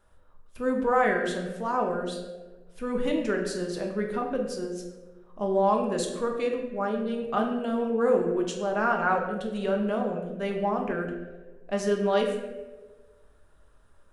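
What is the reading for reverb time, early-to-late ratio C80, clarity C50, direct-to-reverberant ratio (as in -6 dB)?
1.3 s, 7.5 dB, 5.5 dB, 1.0 dB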